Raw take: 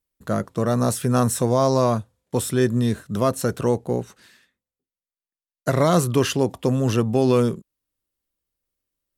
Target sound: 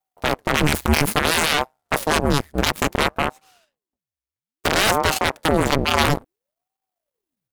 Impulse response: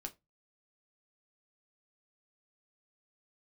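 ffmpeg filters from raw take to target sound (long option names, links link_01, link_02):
-af "aeval=exprs='max(val(0),0)':channel_layout=same,aeval=exprs='0.447*(cos(1*acos(clip(val(0)/0.447,-1,1)))-cos(1*PI/2))+0.224*(cos(8*acos(clip(val(0)/0.447,-1,1)))-cos(8*PI/2))':channel_layout=same,asetrate=53802,aresample=44100,aeval=exprs='val(0)*sin(2*PI*420*n/s+420*0.85/0.59*sin(2*PI*0.59*n/s))':channel_layout=same,volume=4.5dB"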